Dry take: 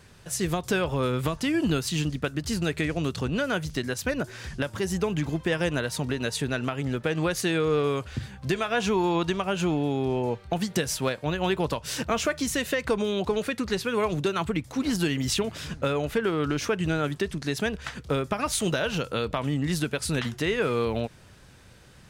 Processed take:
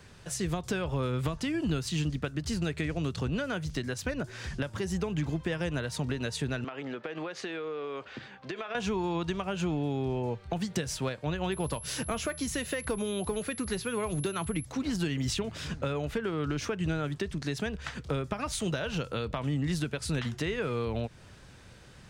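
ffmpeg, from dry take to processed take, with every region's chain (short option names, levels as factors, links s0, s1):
-filter_complex "[0:a]asettb=1/sr,asplit=3[s0][s1][s2];[s0]atrim=end=6.644[s3];[s1]atrim=start=6.64:end=8.75,asetpts=PTS-STARTPTS,afade=t=in:d=0.004:c=qsin,afade=t=out:st=2.106:d=0.004:c=qsin,highpass=340,lowpass=3500,acompressor=threshold=0.0316:ratio=6:attack=3.2:release=140:knee=1:detection=peak[s4];[s2]atrim=start=8.746[s5];[s3][s4]acrossfade=d=0.004:c1=hsin:c2=qsin[s6];[s6][s5]acrossfade=d=0.004:c1=qsin:c2=hsin,asettb=1/sr,asplit=3[s7][s8][s9];[s7]atrim=end=11.524[s10];[s8]atrim=start=11.52:end=14.65,asetpts=PTS-STARTPTS,afade=t=in:d=0.004:c=qsin,afade=t=out:st=3.126:d=0.004:c=qsin,aeval=exprs='val(0)+0.0251*sin(2*PI*11000*n/s)':c=same,asoftclip=type=hard:threshold=0.158[s11];[s9]atrim=start=14.646[s12];[s10][s11]acrossfade=d=0.004:c1=hsin:c2=qsin[s13];[s13][s12]acrossfade=d=0.004:c1=qsin:c2=hsin,equalizer=f=13000:t=o:w=0.54:g=-9.5,acrossover=split=150[s14][s15];[s15]acompressor=threshold=0.0178:ratio=2[s16];[s14][s16]amix=inputs=2:normalize=0"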